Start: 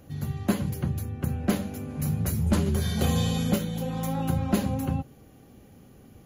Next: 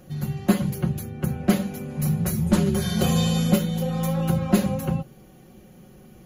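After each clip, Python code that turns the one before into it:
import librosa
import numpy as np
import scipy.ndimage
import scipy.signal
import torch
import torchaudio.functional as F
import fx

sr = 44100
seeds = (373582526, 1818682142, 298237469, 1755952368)

y = x + 0.72 * np.pad(x, (int(5.5 * sr / 1000.0), 0))[:len(x)]
y = y * librosa.db_to_amplitude(2.0)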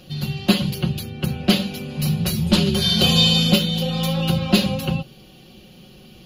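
y = fx.band_shelf(x, sr, hz=3600.0, db=14.5, octaves=1.2)
y = y * librosa.db_to_amplitude(2.0)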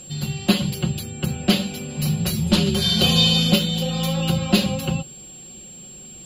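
y = x + 10.0 ** (-38.0 / 20.0) * np.sin(2.0 * np.pi * 7500.0 * np.arange(len(x)) / sr)
y = y * librosa.db_to_amplitude(-1.0)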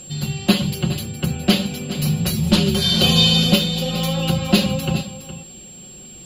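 y = x + 10.0 ** (-13.0 / 20.0) * np.pad(x, (int(415 * sr / 1000.0), 0))[:len(x)]
y = y * librosa.db_to_amplitude(2.0)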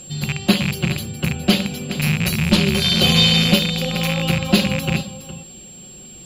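y = fx.rattle_buzz(x, sr, strikes_db=-21.0, level_db=-12.0)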